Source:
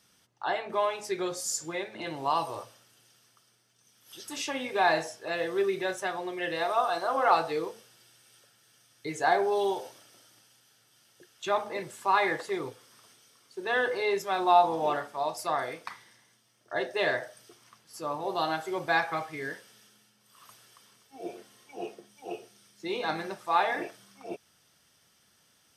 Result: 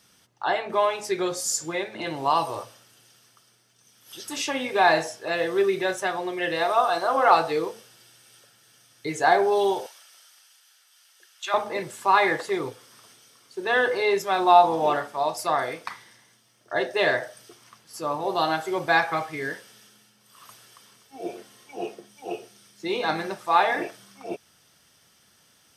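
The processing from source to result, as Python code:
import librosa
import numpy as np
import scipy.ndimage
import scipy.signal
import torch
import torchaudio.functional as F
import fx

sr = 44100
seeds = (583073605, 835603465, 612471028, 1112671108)

y = fx.highpass(x, sr, hz=1100.0, slope=12, at=(9.86, 11.54))
y = y * librosa.db_to_amplitude(5.5)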